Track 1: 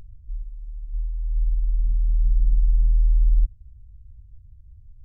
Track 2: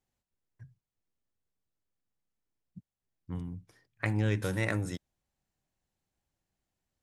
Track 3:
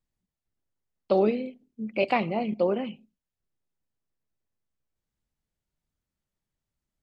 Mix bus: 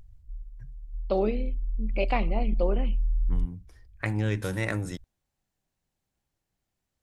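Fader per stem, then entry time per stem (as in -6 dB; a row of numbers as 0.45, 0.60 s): -8.0, +1.5, -3.5 dB; 0.00, 0.00, 0.00 s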